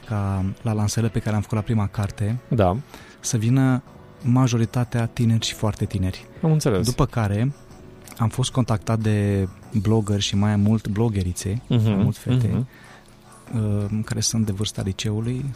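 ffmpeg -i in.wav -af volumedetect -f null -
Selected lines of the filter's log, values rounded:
mean_volume: -22.1 dB
max_volume: -7.1 dB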